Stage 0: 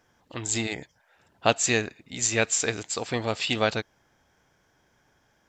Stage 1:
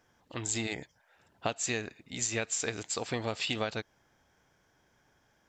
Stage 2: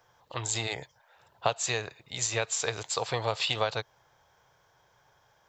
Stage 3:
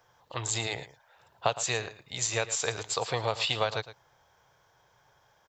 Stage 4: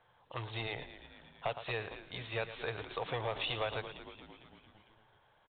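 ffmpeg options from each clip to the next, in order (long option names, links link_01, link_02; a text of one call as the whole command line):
ffmpeg -i in.wav -af "acompressor=threshold=-25dB:ratio=10,volume=-3dB" out.wav
ffmpeg -i in.wav -filter_complex "[0:a]equalizer=frequency=125:width_type=o:width=1:gain=8,equalizer=frequency=250:width_type=o:width=1:gain=-12,equalizer=frequency=500:width_type=o:width=1:gain=7,equalizer=frequency=1000:width_type=o:width=1:gain=10,equalizer=frequency=4000:width_type=o:width=1:gain=9,equalizer=frequency=8000:width_type=o:width=1:gain=-4,acrossover=split=260|4200[link_01][link_02][link_03];[link_03]aexciter=amount=2.3:drive=0.9:freq=6100[link_04];[link_01][link_02][link_04]amix=inputs=3:normalize=0,volume=-2dB" out.wav
ffmpeg -i in.wav -af "aecho=1:1:112:0.188" out.wav
ffmpeg -i in.wav -filter_complex "[0:a]asplit=7[link_01][link_02][link_03][link_04][link_05][link_06][link_07];[link_02]adelay=227,afreqshift=-89,volume=-15dB[link_08];[link_03]adelay=454,afreqshift=-178,volume=-19.4dB[link_09];[link_04]adelay=681,afreqshift=-267,volume=-23.9dB[link_10];[link_05]adelay=908,afreqshift=-356,volume=-28.3dB[link_11];[link_06]adelay=1135,afreqshift=-445,volume=-32.7dB[link_12];[link_07]adelay=1362,afreqshift=-534,volume=-37.2dB[link_13];[link_01][link_08][link_09][link_10][link_11][link_12][link_13]amix=inputs=7:normalize=0,asoftclip=type=tanh:threshold=-21.5dB,volume=-4.5dB" -ar 8000 -c:a pcm_mulaw out.wav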